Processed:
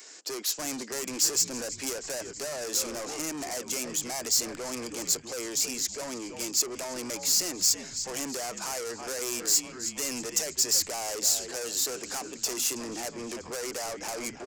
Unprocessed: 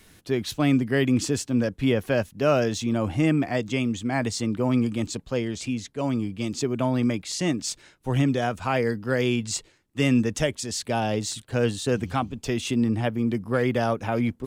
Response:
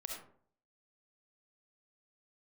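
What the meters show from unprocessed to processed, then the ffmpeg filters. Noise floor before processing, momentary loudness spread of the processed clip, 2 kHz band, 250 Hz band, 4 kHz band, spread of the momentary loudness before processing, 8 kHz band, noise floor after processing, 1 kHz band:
−59 dBFS, 10 LU, −8.0 dB, −16.0 dB, +3.0 dB, 6 LU, +9.5 dB, −45 dBFS, −8.5 dB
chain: -filter_complex "[0:a]highpass=frequency=370:width=0.5412,highpass=frequency=370:width=1.3066,equalizer=frequency=6300:width=3:gain=-9,asplit=2[link_01][link_02];[link_02]asplit=6[link_03][link_04][link_05][link_06][link_07][link_08];[link_03]adelay=322,afreqshift=-76,volume=-17dB[link_09];[link_04]adelay=644,afreqshift=-152,volume=-21.6dB[link_10];[link_05]adelay=966,afreqshift=-228,volume=-26.2dB[link_11];[link_06]adelay=1288,afreqshift=-304,volume=-30.7dB[link_12];[link_07]adelay=1610,afreqshift=-380,volume=-35.3dB[link_13];[link_08]adelay=1932,afreqshift=-456,volume=-39.9dB[link_14];[link_09][link_10][link_11][link_12][link_13][link_14]amix=inputs=6:normalize=0[link_15];[link_01][link_15]amix=inputs=2:normalize=0,acompressor=threshold=-28dB:ratio=4,aresample=16000,volume=35dB,asoftclip=hard,volume=-35dB,aresample=44100,acontrast=84,asoftclip=type=tanh:threshold=-29.5dB,aexciter=amount=7.3:drive=8.2:freq=5200,volume=-3.5dB"

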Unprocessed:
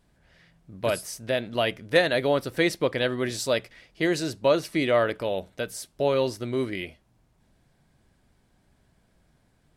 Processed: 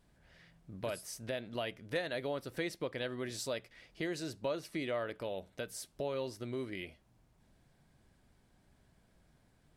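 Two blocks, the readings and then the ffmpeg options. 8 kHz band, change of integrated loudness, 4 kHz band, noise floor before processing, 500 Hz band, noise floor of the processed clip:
−9.5 dB, −13.5 dB, −13.0 dB, −66 dBFS, −14.0 dB, −70 dBFS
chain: -af "acompressor=threshold=-39dB:ratio=2,volume=-3.5dB"

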